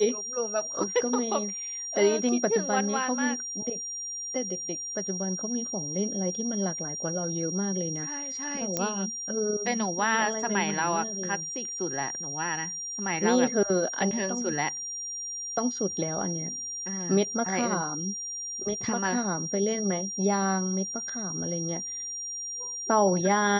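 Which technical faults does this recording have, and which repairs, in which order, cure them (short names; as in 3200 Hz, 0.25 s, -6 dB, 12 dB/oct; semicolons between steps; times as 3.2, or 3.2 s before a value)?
tone 5700 Hz -33 dBFS
8.77 pop -12 dBFS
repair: de-click; notch 5700 Hz, Q 30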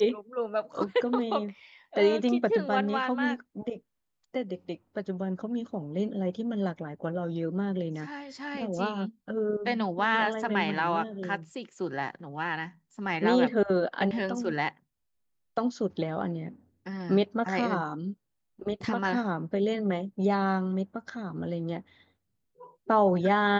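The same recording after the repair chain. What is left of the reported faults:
none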